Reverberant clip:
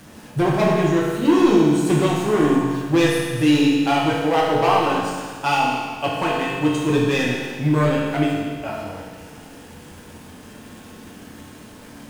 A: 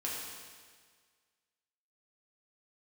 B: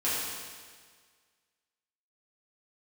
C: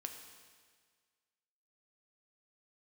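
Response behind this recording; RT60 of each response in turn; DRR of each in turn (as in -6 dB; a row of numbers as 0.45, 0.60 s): A; 1.7, 1.7, 1.7 s; -5.5, -11.0, 4.0 dB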